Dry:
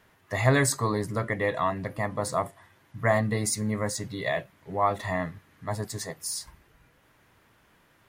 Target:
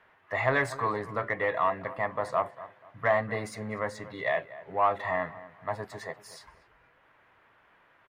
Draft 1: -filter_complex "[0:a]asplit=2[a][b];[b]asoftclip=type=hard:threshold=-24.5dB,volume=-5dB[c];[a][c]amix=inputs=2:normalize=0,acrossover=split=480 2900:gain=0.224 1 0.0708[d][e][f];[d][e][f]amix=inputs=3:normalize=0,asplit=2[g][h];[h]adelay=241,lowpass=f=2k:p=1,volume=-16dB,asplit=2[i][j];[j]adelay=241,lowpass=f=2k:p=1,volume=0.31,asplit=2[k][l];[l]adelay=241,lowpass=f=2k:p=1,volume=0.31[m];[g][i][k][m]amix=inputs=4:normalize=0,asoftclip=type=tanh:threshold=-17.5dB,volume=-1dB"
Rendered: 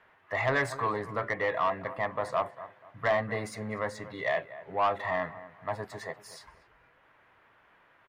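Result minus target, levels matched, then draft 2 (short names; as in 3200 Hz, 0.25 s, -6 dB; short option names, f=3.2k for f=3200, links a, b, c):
soft clip: distortion +13 dB
-filter_complex "[0:a]asplit=2[a][b];[b]asoftclip=type=hard:threshold=-24.5dB,volume=-5dB[c];[a][c]amix=inputs=2:normalize=0,acrossover=split=480 2900:gain=0.224 1 0.0708[d][e][f];[d][e][f]amix=inputs=3:normalize=0,asplit=2[g][h];[h]adelay=241,lowpass=f=2k:p=1,volume=-16dB,asplit=2[i][j];[j]adelay=241,lowpass=f=2k:p=1,volume=0.31,asplit=2[k][l];[l]adelay=241,lowpass=f=2k:p=1,volume=0.31[m];[g][i][k][m]amix=inputs=4:normalize=0,asoftclip=type=tanh:threshold=-8.5dB,volume=-1dB"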